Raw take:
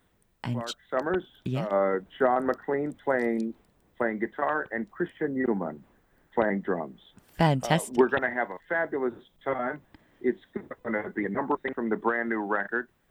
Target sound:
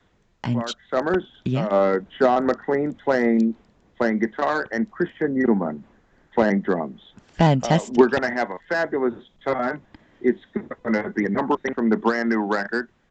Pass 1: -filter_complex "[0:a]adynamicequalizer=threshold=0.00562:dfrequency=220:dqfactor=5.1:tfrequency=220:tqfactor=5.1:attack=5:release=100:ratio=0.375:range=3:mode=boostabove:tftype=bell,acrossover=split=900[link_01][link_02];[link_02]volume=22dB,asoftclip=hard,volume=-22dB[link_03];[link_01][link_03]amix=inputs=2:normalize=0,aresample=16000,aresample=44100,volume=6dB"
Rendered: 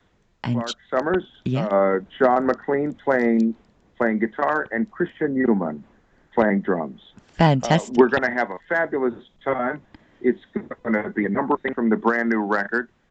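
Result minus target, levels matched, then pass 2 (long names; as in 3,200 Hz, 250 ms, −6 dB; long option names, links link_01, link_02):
gain into a clipping stage and back: distortion −11 dB
-filter_complex "[0:a]adynamicequalizer=threshold=0.00562:dfrequency=220:dqfactor=5.1:tfrequency=220:tqfactor=5.1:attack=5:release=100:ratio=0.375:range=3:mode=boostabove:tftype=bell,acrossover=split=900[link_01][link_02];[link_02]volume=29.5dB,asoftclip=hard,volume=-29.5dB[link_03];[link_01][link_03]amix=inputs=2:normalize=0,aresample=16000,aresample=44100,volume=6dB"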